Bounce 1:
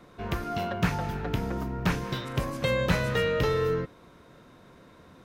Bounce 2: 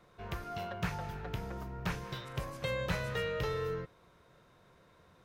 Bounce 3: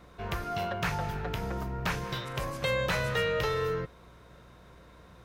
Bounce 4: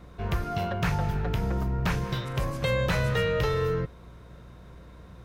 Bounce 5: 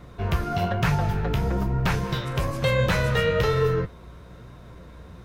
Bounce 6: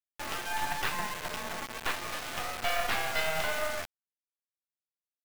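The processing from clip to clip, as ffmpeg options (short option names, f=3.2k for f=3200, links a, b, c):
-af "equalizer=f=260:t=o:w=0.66:g=-10,volume=-8dB"
-filter_complex "[0:a]acrossover=split=520|1700[a][b][c];[a]alimiter=level_in=11dB:limit=-24dB:level=0:latency=1,volume=-11dB[d];[d][b][c]amix=inputs=3:normalize=0,aeval=exprs='val(0)+0.000631*(sin(2*PI*60*n/s)+sin(2*PI*2*60*n/s)/2+sin(2*PI*3*60*n/s)/3+sin(2*PI*4*60*n/s)/4+sin(2*PI*5*60*n/s)/5)':c=same,volume=7.5dB"
-af "lowshelf=f=310:g=9"
-af "flanger=delay=6.5:depth=8.1:regen=52:speed=1.1:shape=triangular,volume=8dB"
-af "highpass=f=530:t=q:w=0.5412,highpass=f=530:t=q:w=1.307,lowpass=f=3.1k:t=q:w=0.5176,lowpass=f=3.1k:t=q:w=0.7071,lowpass=f=3.1k:t=q:w=1.932,afreqshift=170,acrusher=bits=3:dc=4:mix=0:aa=0.000001"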